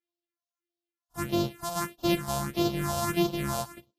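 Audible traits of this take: a buzz of ramps at a fixed pitch in blocks of 128 samples; phasing stages 4, 1.6 Hz, lowest notch 330–1900 Hz; Vorbis

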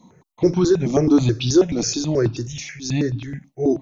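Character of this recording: notches that jump at a steady rate 9.3 Hz 420–1900 Hz

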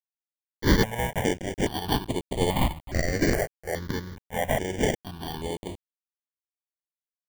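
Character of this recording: aliases and images of a low sample rate 1.3 kHz, jitter 0%; random-step tremolo; a quantiser's noise floor 8-bit, dither none; notches that jump at a steady rate 2.4 Hz 970–5400 Hz

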